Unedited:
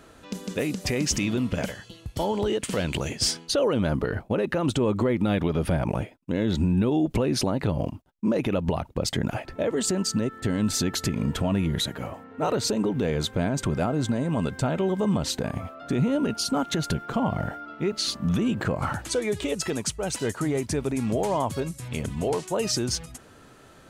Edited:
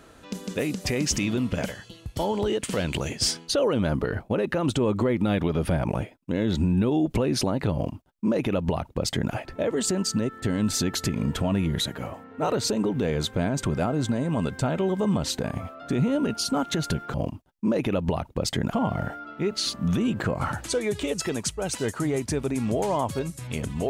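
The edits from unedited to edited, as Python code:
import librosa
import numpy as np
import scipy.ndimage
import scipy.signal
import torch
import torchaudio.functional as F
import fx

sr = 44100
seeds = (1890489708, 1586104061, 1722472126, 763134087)

y = fx.edit(x, sr, fx.duplicate(start_s=7.74, length_s=1.59, to_s=17.14), tone=tone)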